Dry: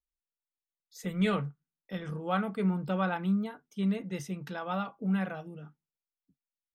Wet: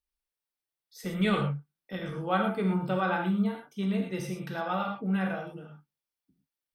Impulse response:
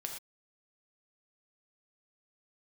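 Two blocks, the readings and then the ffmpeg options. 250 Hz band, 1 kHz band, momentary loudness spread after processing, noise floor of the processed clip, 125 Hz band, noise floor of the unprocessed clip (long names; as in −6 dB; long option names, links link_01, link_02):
+1.5 dB, +4.0 dB, 12 LU, below −85 dBFS, +1.5 dB, below −85 dBFS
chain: -filter_complex "[0:a]equalizer=frequency=6900:width=6.9:gain=-12.5[link_01];[1:a]atrim=start_sample=2205[link_02];[link_01][link_02]afir=irnorm=-1:irlink=0,volume=4.5dB"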